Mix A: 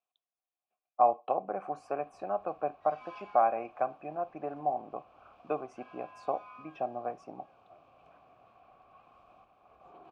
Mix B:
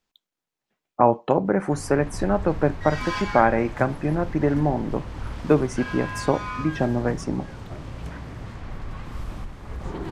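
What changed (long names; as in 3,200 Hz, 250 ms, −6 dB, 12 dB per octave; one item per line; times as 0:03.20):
background +7.0 dB
master: remove formant filter a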